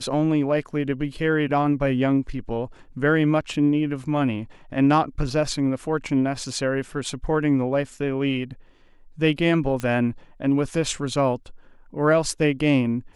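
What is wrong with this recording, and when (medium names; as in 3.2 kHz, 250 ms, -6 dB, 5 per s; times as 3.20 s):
9.80 s: pop -15 dBFS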